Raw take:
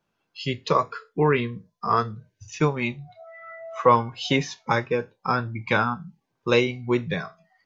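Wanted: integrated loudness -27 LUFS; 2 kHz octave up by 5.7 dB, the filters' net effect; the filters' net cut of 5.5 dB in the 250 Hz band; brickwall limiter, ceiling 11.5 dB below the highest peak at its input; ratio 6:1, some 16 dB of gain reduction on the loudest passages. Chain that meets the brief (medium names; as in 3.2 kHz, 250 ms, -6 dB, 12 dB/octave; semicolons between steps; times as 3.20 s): peaking EQ 250 Hz -8 dB; peaking EQ 2 kHz +7.5 dB; compression 6:1, threshold -29 dBFS; trim +10.5 dB; peak limiter -14.5 dBFS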